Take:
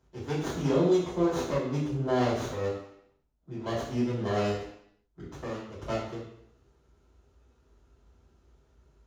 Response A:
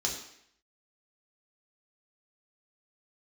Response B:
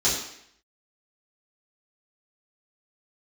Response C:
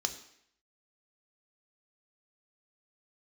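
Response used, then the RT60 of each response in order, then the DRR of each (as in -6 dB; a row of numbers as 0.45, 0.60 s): B; 0.70, 0.70, 0.70 s; -1.5, -10.5, 6.5 dB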